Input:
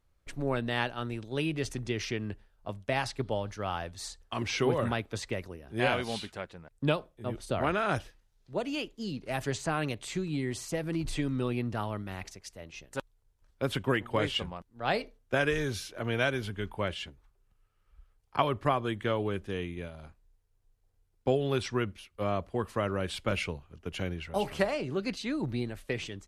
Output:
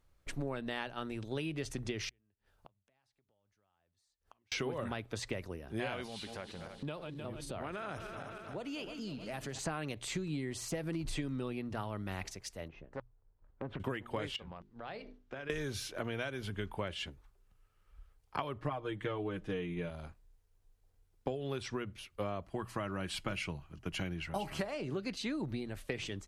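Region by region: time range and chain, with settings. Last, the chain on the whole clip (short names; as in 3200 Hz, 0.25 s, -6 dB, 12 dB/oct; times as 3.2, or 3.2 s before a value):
2.09–4.52 HPF 51 Hz + compressor 5:1, threshold -41 dBFS + flipped gate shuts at -42 dBFS, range -35 dB
6.06–9.59 regenerating reverse delay 0.155 s, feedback 69%, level -13.5 dB + compressor 3:1, threshold -42 dBFS
12.68–13.8 LPF 1200 Hz + compressor 3:1, threshold -40 dBFS + Doppler distortion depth 0.55 ms
14.36–15.5 LPF 4500 Hz + notches 50/100/150/200/250/300/350/400 Hz + compressor 4:1, threshold -45 dBFS
18.58–19.9 high shelf 5100 Hz -9.5 dB + comb 6.5 ms, depth 79%
22.42–24.61 bell 480 Hz -10.5 dB 0.32 oct + notch 3600 Hz, Q 14 + comb 6.2 ms, depth 31%
whole clip: compressor 10:1, threshold -35 dBFS; notches 60/120 Hz; de-esser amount 90%; gain +1.5 dB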